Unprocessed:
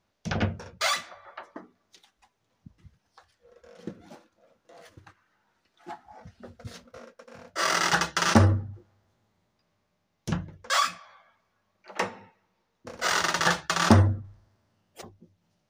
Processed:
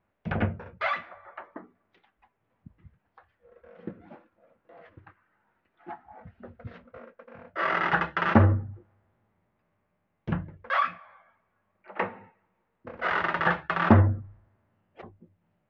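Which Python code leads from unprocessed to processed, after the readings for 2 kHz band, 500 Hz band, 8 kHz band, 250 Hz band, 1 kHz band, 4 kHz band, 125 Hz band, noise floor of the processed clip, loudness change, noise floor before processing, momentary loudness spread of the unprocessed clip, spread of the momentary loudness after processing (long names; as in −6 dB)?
−0.5 dB, 0.0 dB, below −30 dB, 0.0 dB, 0.0 dB, −13.0 dB, 0.0 dB, −76 dBFS, −1.0 dB, −76 dBFS, 24 LU, 24 LU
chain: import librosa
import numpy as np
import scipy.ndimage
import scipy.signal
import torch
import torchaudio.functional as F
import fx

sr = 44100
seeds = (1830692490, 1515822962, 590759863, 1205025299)

y = scipy.signal.sosfilt(scipy.signal.butter(4, 2400.0, 'lowpass', fs=sr, output='sos'), x)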